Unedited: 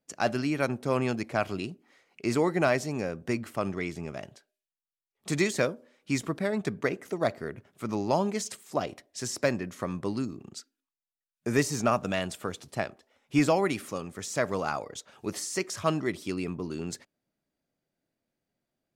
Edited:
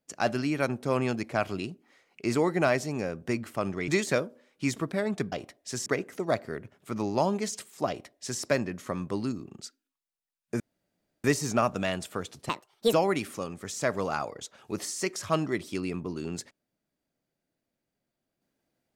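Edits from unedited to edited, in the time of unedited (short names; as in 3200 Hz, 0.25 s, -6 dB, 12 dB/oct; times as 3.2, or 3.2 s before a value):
3.88–5.35 cut
8.81–9.35 copy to 6.79
11.53 insert room tone 0.64 s
12.78–13.47 speed 157%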